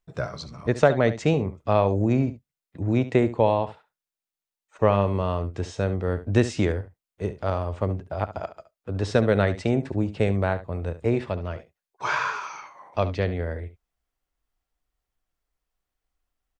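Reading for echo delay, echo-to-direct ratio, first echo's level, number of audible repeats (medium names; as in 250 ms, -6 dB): 70 ms, -14.0 dB, -14.0 dB, 1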